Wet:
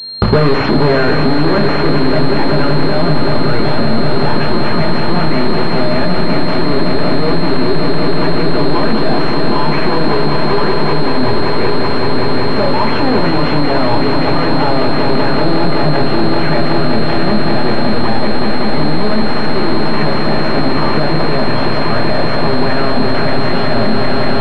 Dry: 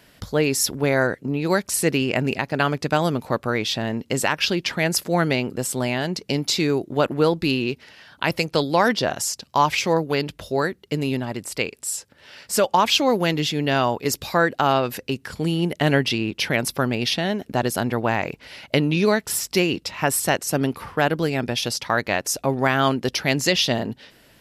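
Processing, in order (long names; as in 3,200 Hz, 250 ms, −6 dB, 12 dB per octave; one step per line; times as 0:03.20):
high-pass filter 75 Hz 12 dB per octave
notch filter 540 Hz, Q 18
leveller curve on the samples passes 5
hollow resonant body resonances 330/870 Hz, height 7 dB
soft clipping −14.5 dBFS, distortion −9 dB
on a send: echo that builds up and dies away 190 ms, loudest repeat 5, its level −8 dB
on the sum: rectangular room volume 280 cubic metres, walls furnished, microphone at 1.3 metres
boost into a limiter +15 dB
switching amplifier with a slow clock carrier 4,200 Hz
level −1 dB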